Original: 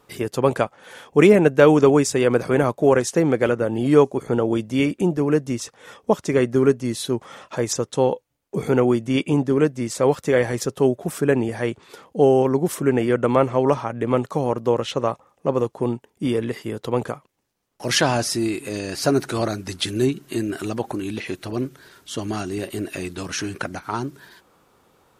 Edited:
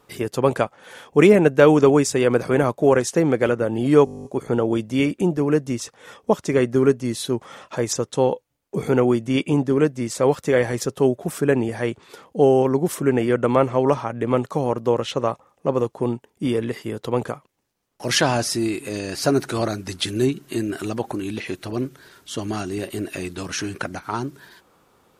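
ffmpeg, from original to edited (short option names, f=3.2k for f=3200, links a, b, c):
-filter_complex "[0:a]asplit=11[a][b][c][d][e][f][g][h][i][j][k];[a]atrim=end=4.072[l];[b]atrim=start=4.048:end=4.072[m];[c]atrim=start=4.048:end=4.072[n];[d]atrim=start=4.048:end=4.072[o];[e]atrim=start=4.048:end=4.072[p];[f]atrim=start=4.048:end=4.072[q];[g]atrim=start=4.048:end=4.072[r];[h]atrim=start=4.048:end=4.072[s];[i]atrim=start=4.048:end=4.072[t];[j]atrim=start=4.048:end=4.072[u];[k]atrim=start=4.048[v];[l][m]acrossfade=d=0.004:c1=hsin:c2=hsin[w];[w][n]acrossfade=d=0.004:c1=hsin:c2=hsin[x];[x][o]acrossfade=d=0.004:c1=hsin:c2=hsin[y];[y][p]acrossfade=d=0.004:c1=hsin:c2=hsin[z];[z][q]acrossfade=d=0.004:c1=hsin:c2=hsin[aa];[aa][r]acrossfade=d=0.004:c1=hsin:c2=hsin[ab];[ab][s]acrossfade=d=0.004:c1=hsin:c2=hsin[ac];[ac][t]acrossfade=d=0.004:c1=hsin:c2=hsin[ad];[ad][u]acrossfade=d=0.004:c1=hsin:c2=hsin[ae];[ae][v]acrossfade=d=0.004:c1=hsin:c2=hsin"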